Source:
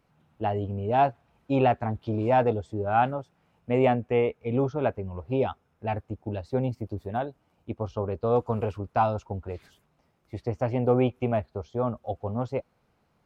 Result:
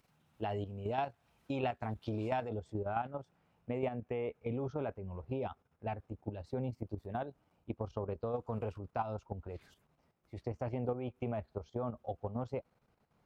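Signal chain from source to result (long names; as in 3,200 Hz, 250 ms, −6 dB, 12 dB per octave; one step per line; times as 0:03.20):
output level in coarse steps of 10 dB
high-shelf EQ 2,500 Hz +11 dB, from 0:02.49 −2 dB
downward compressor 4 to 1, threshold −31 dBFS, peak gain reduction 12 dB
level −2.5 dB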